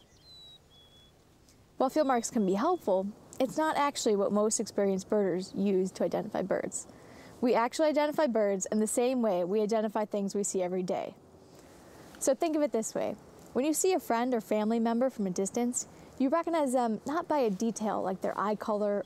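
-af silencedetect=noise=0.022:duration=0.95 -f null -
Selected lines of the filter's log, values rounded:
silence_start: 0.00
silence_end: 1.80 | silence_duration: 1.80
silence_start: 11.09
silence_end: 12.22 | silence_duration: 1.13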